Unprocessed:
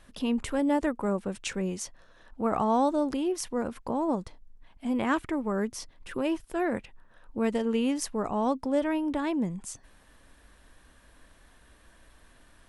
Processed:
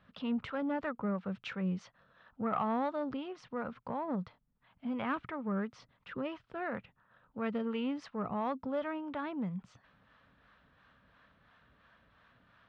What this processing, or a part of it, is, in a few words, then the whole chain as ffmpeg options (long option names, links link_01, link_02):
guitar amplifier with harmonic tremolo: -filter_complex "[0:a]acrossover=split=530[link_01][link_02];[link_01]aeval=exprs='val(0)*(1-0.5/2+0.5/2*cos(2*PI*2.9*n/s))':channel_layout=same[link_03];[link_02]aeval=exprs='val(0)*(1-0.5/2-0.5/2*cos(2*PI*2.9*n/s))':channel_layout=same[link_04];[link_03][link_04]amix=inputs=2:normalize=0,asoftclip=type=tanh:threshold=-20.5dB,highpass=87,equalizer=frequency=120:width_type=q:width=4:gain=7,equalizer=frequency=180:width_type=q:width=4:gain=6,equalizer=frequency=340:width_type=q:width=4:gain=-9,equalizer=frequency=1300:width_type=q:width=4:gain=8,lowpass=frequency=3800:width=0.5412,lowpass=frequency=3800:width=1.3066,volume=-4dB"